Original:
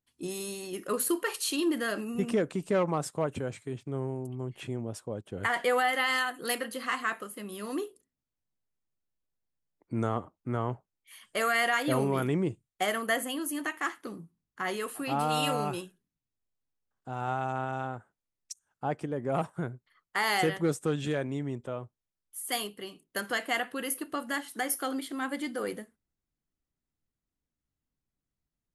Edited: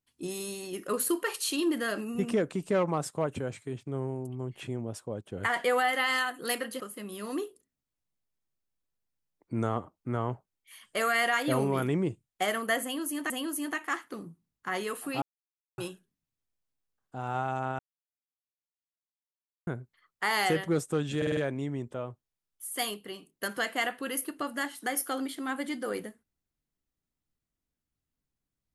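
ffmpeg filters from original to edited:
-filter_complex "[0:a]asplit=11[s0][s1][s2][s3][s4][s5][s6][s7][s8][s9][s10];[s0]atrim=end=6.802[s11];[s1]atrim=start=7.198:end=13.702[s12];[s2]atrim=start=13.228:end=15.15,asetpts=PTS-STARTPTS,afade=t=out:st=1.918:d=0.004:c=hsin[s13];[s3]atrim=start=15.15:end=15.71,asetpts=PTS-STARTPTS,volume=0[s14];[s4]atrim=start=15.71:end=17.72,asetpts=PTS-STARTPTS,afade=t=in:d=0.004:c=hsin,afade=t=out:st=2.006:d=0.004:c=hsin[s15];[s5]atrim=start=17.72:end=19.6,asetpts=PTS-STARTPTS,volume=0[s16];[s6]atrim=start=19.6:end=21.152,asetpts=PTS-STARTPTS,afade=t=in:d=0.004:c=hsin[s17];[s7]atrim=start=21.098:end=21.152[s18];[s8]atrim=start=21.098:end=21.152[s19];[s9]atrim=start=21.098:end=21.152[s20];[s10]atrim=start=21.098[s21];[s11][s12]acrossfade=d=0.004:c1=hsin:c2=hsin[s22];[s13][s14][s15][s16][s17]concat=n=5:v=0:a=1[s23];[s22][s23]acrossfade=d=0.004:c1=hsin:c2=hsin[s24];[s24][s18]acrossfade=d=0.004:c1=hsin:c2=hsin[s25];[s25][s19]acrossfade=d=0.004:c1=hsin:c2=hsin[s26];[s26][s20]acrossfade=d=0.004:c1=hsin:c2=hsin[s27];[s27][s21]acrossfade=d=0.004:c1=hsin:c2=hsin"

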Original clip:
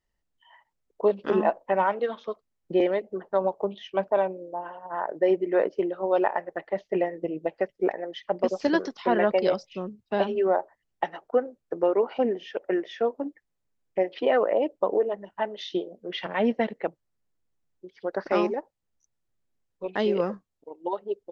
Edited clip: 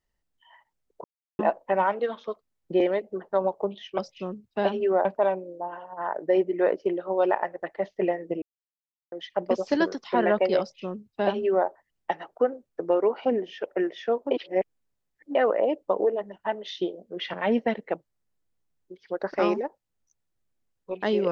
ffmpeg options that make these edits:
-filter_complex "[0:a]asplit=9[s0][s1][s2][s3][s4][s5][s6][s7][s8];[s0]atrim=end=1.04,asetpts=PTS-STARTPTS,afade=t=out:st=1.036:d=0.004:c=hsin[s9];[s1]atrim=start=1.04:end=1.39,asetpts=PTS-STARTPTS,volume=0[s10];[s2]atrim=start=1.39:end=3.982,asetpts=PTS-STARTPTS,afade=t=in:d=0.004:c=hsin[s11];[s3]atrim=start=9.528:end=10.602[s12];[s4]atrim=start=3.978:end=7.35,asetpts=PTS-STARTPTS,afade=t=out:st=3.368:d=0.004:c=hsin[s13];[s5]atrim=start=7.35:end=8.05,asetpts=PTS-STARTPTS,volume=0[s14];[s6]atrim=start=8.05:end=13.242,asetpts=PTS-STARTPTS,afade=t=in:d=0.004:c=hsin[s15];[s7]atrim=start=13.238:end=14.282,asetpts=PTS-STARTPTS,areverse[s16];[s8]atrim=start=14.278[s17];[s9][s10][s11]concat=n=3:v=0:a=1[s18];[s18][s12]acrossfade=d=0.004:c1=hsin:c2=hsin[s19];[s13][s14][s15]concat=n=3:v=0:a=1[s20];[s19][s20]acrossfade=d=0.004:c1=hsin:c2=hsin[s21];[s21][s16]acrossfade=d=0.004:c1=hsin:c2=hsin[s22];[s22][s17]acrossfade=d=0.004:c1=hsin:c2=hsin"

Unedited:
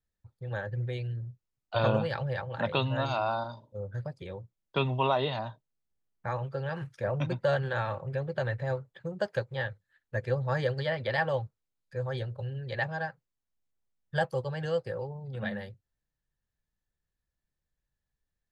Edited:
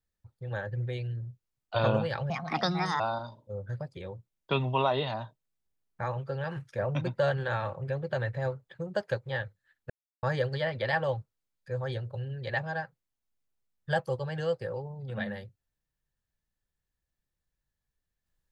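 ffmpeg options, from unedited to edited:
-filter_complex "[0:a]asplit=5[s0][s1][s2][s3][s4];[s0]atrim=end=2.304[s5];[s1]atrim=start=2.3:end=3.25,asetpts=PTS-STARTPTS,asetrate=59976,aresample=44100,atrim=end_sample=30805,asetpts=PTS-STARTPTS[s6];[s2]atrim=start=3.246:end=10.15,asetpts=PTS-STARTPTS,afade=t=out:st=6.9:d=0.004:c=hsin[s7];[s3]atrim=start=10.15:end=10.48,asetpts=PTS-STARTPTS,volume=0[s8];[s4]atrim=start=10.48,asetpts=PTS-STARTPTS,afade=t=in:d=0.004:c=hsin[s9];[s5][s6]acrossfade=d=0.004:c1=hsin:c2=hsin[s10];[s7][s8][s9]concat=n=3:v=0:a=1[s11];[s10][s11]acrossfade=d=0.004:c1=hsin:c2=hsin"

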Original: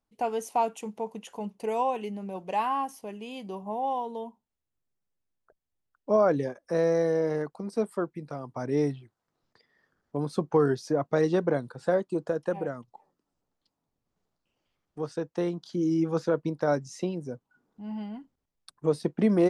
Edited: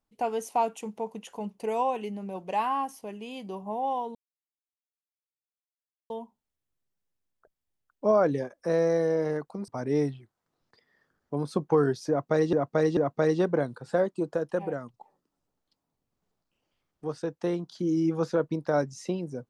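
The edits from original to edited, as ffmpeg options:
-filter_complex "[0:a]asplit=5[s0][s1][s2][s3][s4];[s0]atrim=end=4.15,asetpts=PTS-STARTPTS,afade=t=out:st=4.146:d=0.004:c=hsin,apad=pad_dur=1.95[s5];[s1]atrim=start=4.15:end=7.732,asetpts=PTS-STARTPTS,afade=t=in:d=0.004:c=hsin[s6];[s2]atrim=start=8.498:end=11.352[s7];[s3]atrim=start=10.908:end=11.352[s8];[s4]atrim=start=10.908[s9];[s5][s6]concat=n=2:v=0:a=1[s10];[s10][s7]acrossfade=d=0.004:c1=hsin:c2=hsin[s11];[s11][s8]acrossfade=d=0.004:c1=hsin:c2=hsin[s12];[s12][s9]acrossfade=d=0.004:c1=hsin:c2=hsin"

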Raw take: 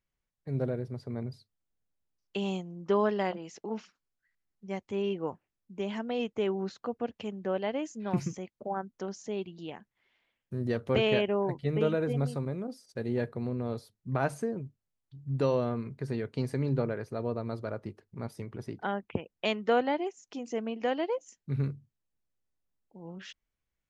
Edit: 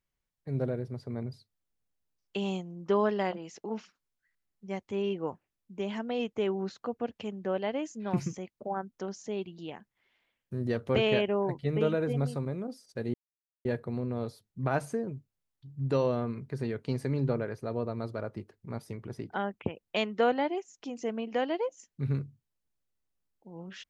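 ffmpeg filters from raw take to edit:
-filter_complex "[0:a]asplit=2[s0][s1];[s0]atrim=end=13.14,asetpts=PTS-STARTPTS,afade=t=out:st=13.136:d=0.004:c=hsin,apad=pad_dur=0.51[s2];[s1]atrim=start=13.14,asetpts=PTS-STARTPTS,afade=t=in:d=0.004:c=hsin[s3];[s2][s3]concat=n=2:v=0:a=1"

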